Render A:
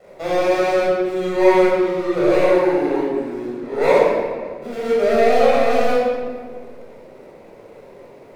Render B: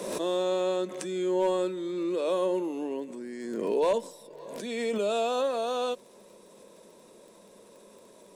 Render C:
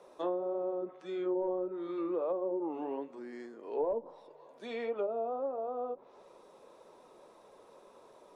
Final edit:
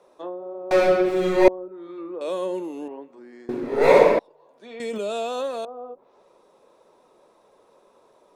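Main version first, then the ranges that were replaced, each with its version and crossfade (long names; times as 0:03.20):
C
0:00.71–0:01.48: punch in from A
0:02.21–0:02.88: punch in from B
0:03.49–0:04.19: punch in from A
0:04.80–0:05.65: punch in from B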